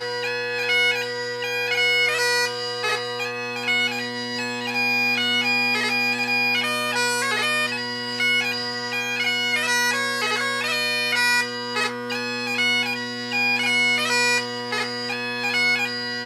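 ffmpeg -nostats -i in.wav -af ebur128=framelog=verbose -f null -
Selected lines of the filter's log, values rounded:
Integrated loudness:
  I:         -21.0 LUFS
  Threshold: -31.0 LUFS
Loudness range:
  LRA:         1.5 LU
  Threshold: -40.9 LUFS
  LRA low:   -21.6 LUFS
  LRA high:  -20.1 LUFS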